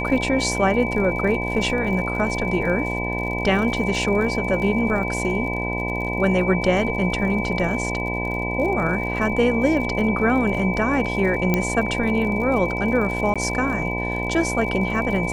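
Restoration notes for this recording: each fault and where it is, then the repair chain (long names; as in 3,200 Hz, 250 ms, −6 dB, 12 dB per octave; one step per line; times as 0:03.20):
mains buzz 60 Hz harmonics 17 −27 dBFS
surface crackle 52 per second −30 dBFS
whistle 2,300 Hz −27 dBFS
0:11.54: click −6 dBFS
0:13.34–0:13.36: drop-out 16 ms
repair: click removal
notch filter 2,300 Hz, Q 30
hum removal 60 Hz, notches 17
repair the gap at 0:13.34, 16 ms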